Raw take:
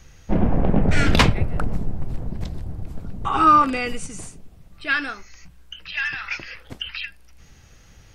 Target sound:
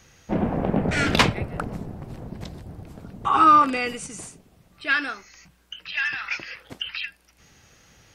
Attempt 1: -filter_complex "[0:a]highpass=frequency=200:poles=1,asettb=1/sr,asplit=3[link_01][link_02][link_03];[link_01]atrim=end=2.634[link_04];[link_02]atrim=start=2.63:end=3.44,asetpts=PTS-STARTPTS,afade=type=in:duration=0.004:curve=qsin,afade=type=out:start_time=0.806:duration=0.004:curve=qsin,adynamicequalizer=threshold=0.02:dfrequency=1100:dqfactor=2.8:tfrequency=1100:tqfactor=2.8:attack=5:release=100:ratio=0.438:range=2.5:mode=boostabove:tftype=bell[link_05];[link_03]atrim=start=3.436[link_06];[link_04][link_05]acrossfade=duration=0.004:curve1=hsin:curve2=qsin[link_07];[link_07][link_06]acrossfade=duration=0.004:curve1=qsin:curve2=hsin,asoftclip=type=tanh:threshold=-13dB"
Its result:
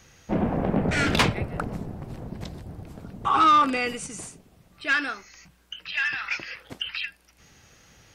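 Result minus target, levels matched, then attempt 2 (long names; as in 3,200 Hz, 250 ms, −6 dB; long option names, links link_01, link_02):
soft clipping: distortion +16 dB
-filter_complex "[0:a]highpass=frequency=200:poles=1,asettb=1/sr,asplit=3[link_01][link_02][link_03];[link_01]atrim=end=2.634[link_04];[link_02]atrim=start=2.63:end=3.44,asetpts=PTS-STARTPTS,afade=type=in:duration=0.004:curve=qsin,afade=type=out:start_time=0.806:duration=0.004:curve=qsin,adynamicequalizer=threshold=0.02:dfrequency=1100:dqfactor=2.8:tfrequency=1100:tqfactor=2.8:attack=5:release=100:ratio=0.438:range=2.5:mode=boostabove:tftype=bell[link_05];[link_03]atrim=start=3.436[link_06];[link_04][link_05]acrossfade=duration=0.004:curve1=hsin:curve2=qsin[link_07];[link_07][link_06]acrossfade=duration=0.004:curve1=qsin:curve2=hsin,asoftclip=type=tanh:threshold=-2.5dB"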